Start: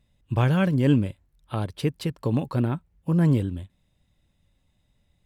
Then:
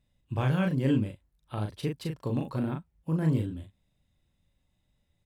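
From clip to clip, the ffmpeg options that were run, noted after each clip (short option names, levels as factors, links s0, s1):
-filter_complex "[0:a]asplit=2[s0][s1];[s1]adelay=38,volume=0.631[s2];[s0][s2]amix=inputs=2:normalize=0,volume=0.447"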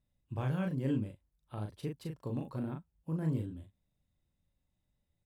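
-af "equalizer=f=3100:t=o:w=2.2:g=-4.5,volume=0.447"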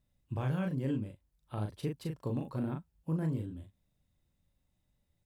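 -af "alimiter=level_in=1.68:limit=0.0631:level=0:latency=1:release=439,volume=0.596,volume=1.5"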